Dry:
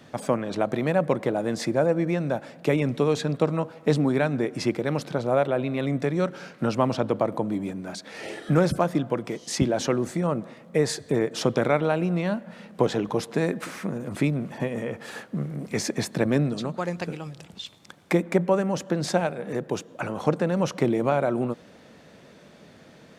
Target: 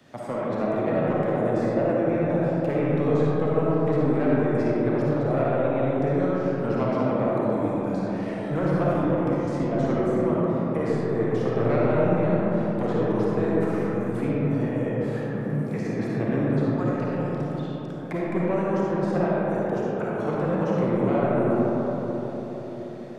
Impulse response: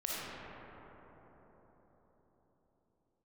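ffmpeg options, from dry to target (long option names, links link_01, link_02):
-filter_complex "[0:a]acrossover=split=120|670|2100[link_01][link_02][link_03][link_04];[link_04]acompressor=threshold=-52dB:ratio=6[link_05];[link_01][link_02][link_03][link_05]amix=inputs=4:normalize=0,asoftclip=type=tanh:threshold=-16dB[link_06];[1:a]atrim=start_sample=2205[link_07];[link_06][link_07]afir=irnorm=-1:irlink=0,volume=-3dB"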